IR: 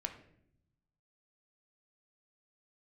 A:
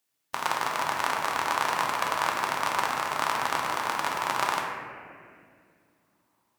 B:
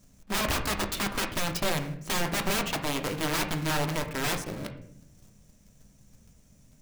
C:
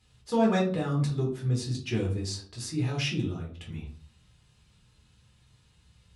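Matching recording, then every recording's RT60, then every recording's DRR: B; 2.2, 0.70, 0.45 s; -1.5, 4.5, -3.5 dB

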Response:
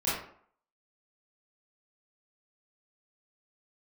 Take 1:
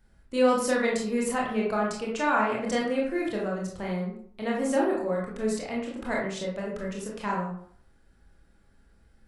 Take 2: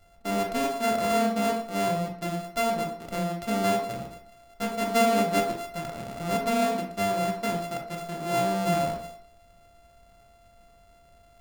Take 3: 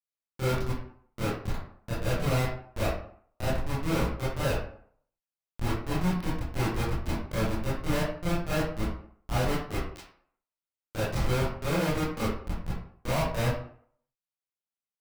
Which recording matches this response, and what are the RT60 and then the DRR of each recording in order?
3; 0.60, 0.60, 0.60 s; -3.5, 1.0, -11.0 dB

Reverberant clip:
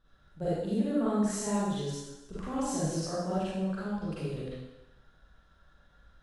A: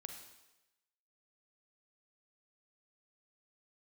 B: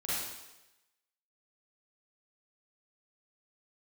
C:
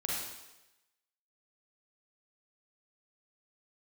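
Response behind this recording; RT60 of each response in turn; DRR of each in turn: B; 1.0, 1.0, 1.0 s; 4.5, -10.5, -4.5 dB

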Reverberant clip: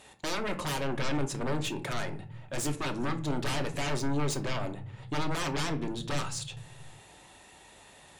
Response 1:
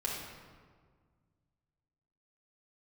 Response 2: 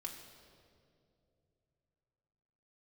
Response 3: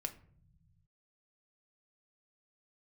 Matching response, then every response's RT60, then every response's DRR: 3; 1.7, 2.6, 0.55 s; -4.0, -0.5, 5.5 dB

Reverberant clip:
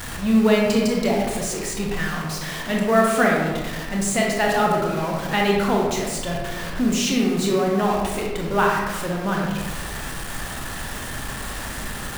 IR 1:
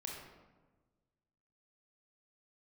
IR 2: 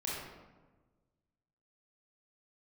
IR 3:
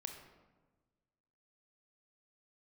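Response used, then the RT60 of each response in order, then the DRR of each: 1; 1.3, 1.3, 1.3 s; -1.5, -6.0, 4.0 dB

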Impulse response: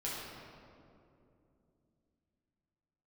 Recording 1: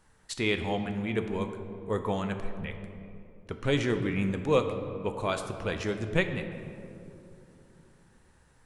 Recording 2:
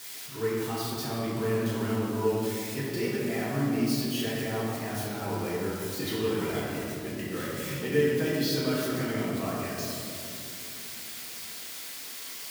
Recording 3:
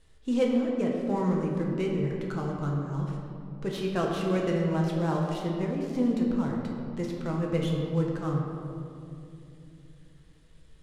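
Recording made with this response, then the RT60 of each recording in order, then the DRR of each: 2; 2.9, 2.7, 2.7 s; 6.5, -7.5, -1.5 dB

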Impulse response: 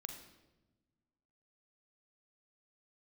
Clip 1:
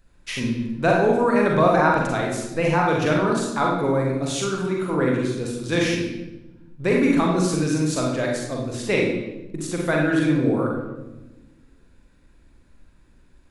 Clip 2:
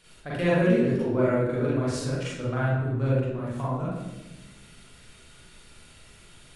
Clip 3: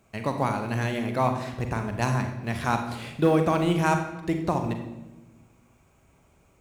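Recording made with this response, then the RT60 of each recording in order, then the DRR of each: 3; 1.1, 1.1, 1.1 s; -2.0, -8.0, 5.0 dB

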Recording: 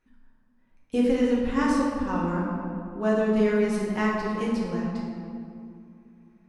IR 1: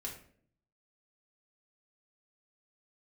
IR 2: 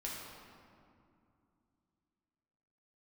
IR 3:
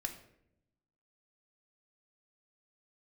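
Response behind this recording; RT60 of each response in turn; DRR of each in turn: 2; 0.55, 2.5, 0.75 s; -3.0, -5.0, 5.0 dB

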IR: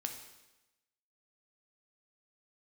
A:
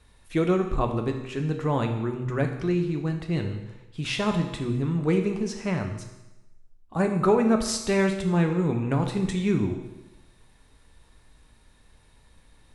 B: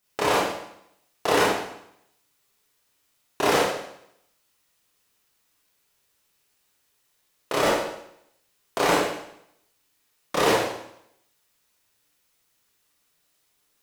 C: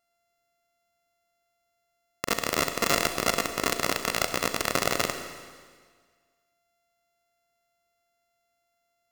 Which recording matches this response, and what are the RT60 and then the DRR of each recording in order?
A; 1.0, 0.75, 1.7 s; 4.0, -6.5, 7.0 dB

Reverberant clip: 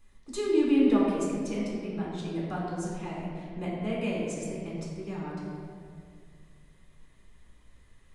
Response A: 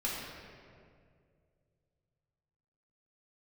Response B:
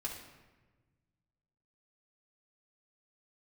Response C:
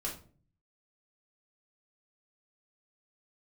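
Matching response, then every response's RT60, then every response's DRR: A; 2.2, 1.3, 0.45 s; -5.5, -3.5, -4.5 dB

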